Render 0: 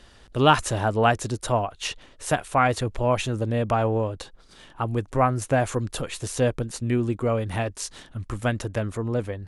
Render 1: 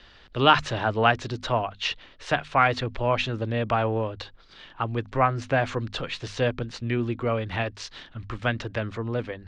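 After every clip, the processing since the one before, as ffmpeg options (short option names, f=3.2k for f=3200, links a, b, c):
-filter_complex "[0:a]bandreject=f=50:t=h:w=6,bandreject=f=100:t=h:w=6,bandreject=f=150:t=h:w=6,bandreject=f=200:t=h:w=6,bandreject=f=250:t=h:w=6,acrossover=split=420|1200[a][b][c];[c]acontrast=65[d];[a][b][d]amix=inputs=3:normalize=0,lowpass=f=4.5k:w=0.5412,lowpass=f=4.5k:w=1.3066,volume=-2.5dB"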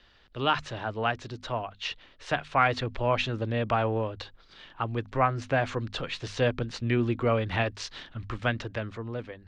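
-af "dynaudnorm=f=230:g=11:m=11dB,volume=-8dB"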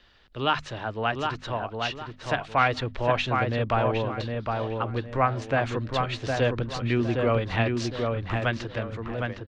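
-filter_complex "[0:a]asplit=2[a][b];[b]adelay=761,lowpass=f=2.2k:p=1,volume=-3.5dB,asplit=2[c][d];[d]adelay=761,lowpass=f=2.2k:p=1,volume=0.33,asplit=2[e][f];[f]adelay=761,lowpass=f=2.2k:p=1,volume=0.33,asplit=2[g][h];[h]adelay=761,lowpass=f=2.2k:p=1,volume=0.33[i];[a][c][e][g][i]amix=inputs=5:normalize=0,volume=1dB"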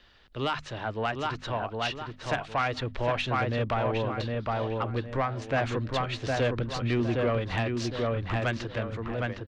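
-af "alimiter=limit=-13.5dB:level=0:latency=1:release=357,asoftclip=type=tanh:threshold=-18.5dB"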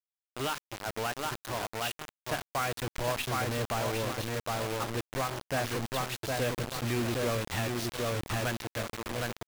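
-af "acrusher=bits=4:mix=0:aa=0.000001,volume=-4.5dB"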